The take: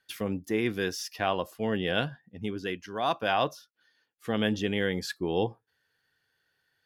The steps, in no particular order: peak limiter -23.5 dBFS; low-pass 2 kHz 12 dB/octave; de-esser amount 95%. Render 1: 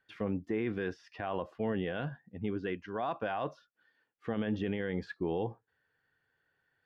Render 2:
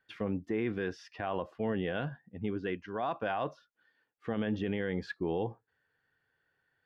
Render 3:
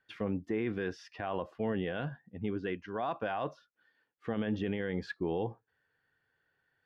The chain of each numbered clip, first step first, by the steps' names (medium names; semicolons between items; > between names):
peak limiter > de-esser > low-pass; low-pass > peak limiter > de-esser; peak limiter > low-pass > de-esser